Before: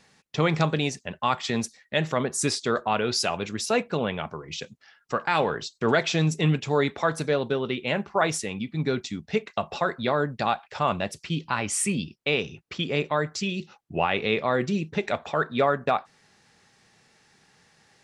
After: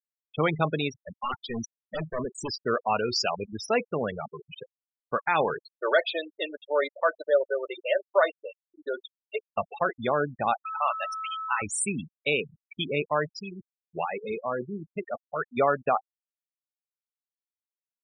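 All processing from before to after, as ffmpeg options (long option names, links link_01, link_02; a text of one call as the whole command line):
ffmpeg -i in.wav -filter_complex "[0:a]asettb=1/sr,asplit=3[link_01][link_02][link_03];[link_01]atrim=end=0.904[link_04];[link_02]atrim=start=0.9:end=2.66,asetpts=PTS-STARTPTS,afade=type=in:duration=0.004:curve=qsin,afade=type=out:start_time=1.756:duration=0.004:curve=qsin,aeval=exprs='0.0841*(abs(mod(val(0)/0.0841+3,4)-2)-1)':channel_layout=same,adynamicsmooth=sensitivity=7:basefreq=7000[link_05];[link_03]atrim=start=2.656[link_06];[link_04][link_05]acrossfade=duration=0.004:curve1=hsin:curve2=qsin[link_07];[link_07][link_06]acrossfade=duration=0.004:curve1=qsin:curve2=hsin,asettb=1/sr,asplit=3[link_08][link_09][link_10];[link_08]atrim=end=5.644[link_11];[link_09]atrim=start=5.64:end=9.52,asetpts=PTS-STARTPTS,afade=type=in:duration=0.004:curve=qsin,afade=type=out:start_time=3.876:duration=0.004:curve=qsin,highpass=frequency=430:width=0.5412,highpass=frequency=430:width=1.3066,equalizer=frequency=560:width_type=q:width=4:gain=7,equalizer=frequency=820:width_type=q:width=4:gain=-8,equalizer=frequency=2300:width_type=q:width=4:gain=-4,lowpass=frequency=4900:width=0.5412,lowpass=frequency=4900:width=1.3066,aecho=1:1:3.3:0.37,atrim=end_sample=171108[link_12];[link_10]atrim=start=9.516[link_13];[link_11][link_12]acrossfade=duration=0.004:curve1=hsin:curve2=qsin[link_14];[link_14][link_13]acrossfade=duration=0.004:curve1=qsin:curve2=hsin,asettb=1/sr,asplit=3[link_15][link_16][link_17];[link_15]atrim=end=10.654[link_18];[link_16]atrim=start=10.65:end=11.62,asetpts=PTS-STARTPTS,afade=type=in:duration=0.004:curve=qsin,afade=type=out:start_time=0.966:duration=0.004:curve=qsin,aeval=exprs='val(0)+0.5*0.0266*sgn(val(0))':channel_layout=same,highpass=850,aeval=exprs='val(0)+0.0282*sin(2*PI*1300*n/s)':channel_layout=same[link_19];[link_17]atrim=start=11.616[link_20];[link_18][link_19]acrossfade=duration=0.004:curve1=hsin:curve2=qsin[link_21];[link_21][link_20]acrossfade=duration=0.004:curve1=qsin:curve2=hsin,asettb=1/sr,asplit=3[link_22][link_23][link_24];[link_22]atrim=end=13.394[link_25];[link_23]atrim=start=13.39:end=15.57,asetpts=PTS-STARTPTS,afade=type=in:duration=0.004:curve=qsin,afade=type=out:start_time=2.176:duration=0.004:curve=qsin,adynamicequalizer=threshold=0.0112:dfrequency=2500:dqfactor=1.9:tfrequency=2500:tqfactor=1.9:attack=5:release=100:ratio=0.375:range=3:mode=cutabove:tftype=bell,flanger=delay=0.5:depth=5.6:regen=89:speed=1.5:shape=triangular[link_26];[link_24]atrim=start=15.566[link_27];[link_25][link_26]acrossfade=duration=0.004:curve1=hsin:curve2=qsin[link_28];[link_28][link_27]acrossfade=duration=0.004:curve1=qsin:curve2=hsin,afftfilt=real='re*gte(hypot(re,im),0.0794)':imag='im*gte(hypot(re,im),0.0794)':win_size=1024:overlap=0.75,equalizer=frequency=170:width=0.89:gain=-5.5" out.wav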